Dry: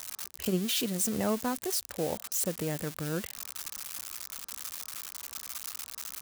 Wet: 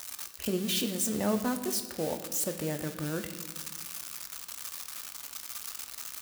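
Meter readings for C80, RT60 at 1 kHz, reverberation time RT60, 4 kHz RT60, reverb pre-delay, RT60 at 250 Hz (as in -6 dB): 11.5 dB, 1.2 s, 1.4 s, 1.1 s, 3 ms, 1.8 s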